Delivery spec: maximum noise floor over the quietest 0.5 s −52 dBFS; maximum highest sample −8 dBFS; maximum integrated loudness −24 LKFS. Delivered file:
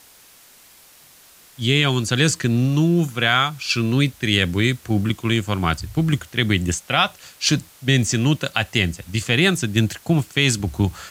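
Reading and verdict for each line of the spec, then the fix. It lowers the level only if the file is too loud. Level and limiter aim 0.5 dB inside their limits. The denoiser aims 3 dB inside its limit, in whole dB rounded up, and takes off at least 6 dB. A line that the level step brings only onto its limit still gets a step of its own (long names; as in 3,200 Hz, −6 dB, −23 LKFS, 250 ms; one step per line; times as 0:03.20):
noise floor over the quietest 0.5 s −49 dBFS: out of spec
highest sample −3.5 dBFS: out of spec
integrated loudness −20.0 LKFS: out of spec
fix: level −4.5 dB
brickwall limiter −8.5 dBFS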